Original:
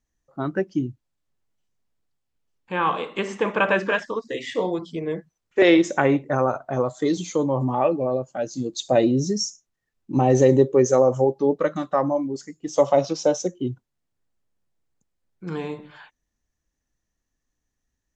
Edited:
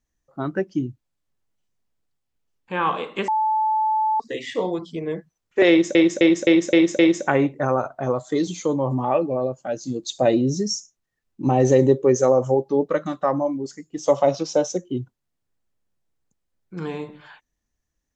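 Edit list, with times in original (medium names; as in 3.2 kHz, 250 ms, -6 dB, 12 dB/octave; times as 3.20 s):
3.28–4.20 s: bleep 870 Hz -17.5 dBFS
5.69–5.95 s: loop, 6 plays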